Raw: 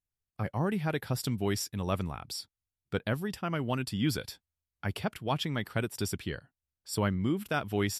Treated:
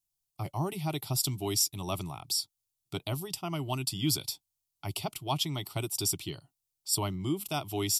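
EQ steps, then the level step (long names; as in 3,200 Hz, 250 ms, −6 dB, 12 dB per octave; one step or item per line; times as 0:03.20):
high-shelf EQ 2,700 Hz +11.5 dB
phaser with its sweep stopped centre 330 Hz, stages 8
0.0 dB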